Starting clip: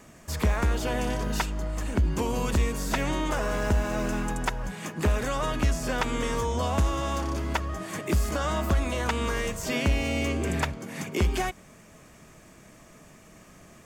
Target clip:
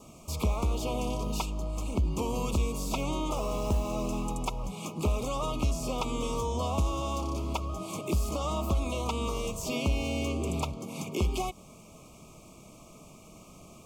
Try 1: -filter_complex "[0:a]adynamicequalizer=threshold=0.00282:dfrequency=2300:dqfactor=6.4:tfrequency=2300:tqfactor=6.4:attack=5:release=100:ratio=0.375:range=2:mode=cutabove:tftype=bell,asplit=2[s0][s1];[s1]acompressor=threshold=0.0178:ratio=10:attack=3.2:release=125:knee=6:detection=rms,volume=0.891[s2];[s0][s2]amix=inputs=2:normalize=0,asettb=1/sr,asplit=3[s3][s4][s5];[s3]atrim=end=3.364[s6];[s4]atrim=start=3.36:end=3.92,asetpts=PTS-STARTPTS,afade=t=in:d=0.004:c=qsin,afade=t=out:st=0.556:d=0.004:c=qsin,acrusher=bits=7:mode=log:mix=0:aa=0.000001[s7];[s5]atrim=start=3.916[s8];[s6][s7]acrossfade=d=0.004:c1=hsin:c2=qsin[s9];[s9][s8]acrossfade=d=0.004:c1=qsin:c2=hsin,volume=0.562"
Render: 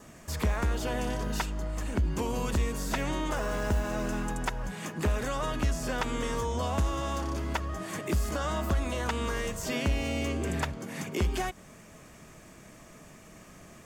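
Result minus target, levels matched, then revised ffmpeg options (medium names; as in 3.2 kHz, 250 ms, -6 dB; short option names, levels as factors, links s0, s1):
2 kHz band +6.5 dB
-filter_complex "[0:a]adynamicequalizer=threshold=0.00282:dfrequency=2300:dqfactor=6.4:tfrequency=2300:tqfactor=6.4:attack=5:release=100:ratio=0.375:range=2:mode=cutabove:tftype=bell,asuperstop=centerf=1700:order=12:qfactor=1.8,asplit=2[s0][s1];[s1]acompressor=threshold=0.0178:ratio=10:attack=3.2:release=125:knee=6:detection=rms,volume=0.891[s2];[s0][s2]amix=inputs=2:normalize=0,asettb=1/sr,asplit=3[s3][s4][s5];[s3]atrim=end=3.364[s6];[s4]atrim=start=3.36:end=3.92,asetpts=PTS-STARTPTS,afade=t=in:d=0.004:c=qsin,afade=t=out:st=0.556:d=0.004:c=qsin,acrusher=bits=7:mode=log:mix=0:aa=0.000001[s7];[s5]atrim=start=3.916[s8];[s6][s7]acrossfade=d=0.004:c1=hsin:c2=qsin[s9];[s9][s8]acrossfade=d=0.004:c1=qsin:c2=hsin,volume=0.562"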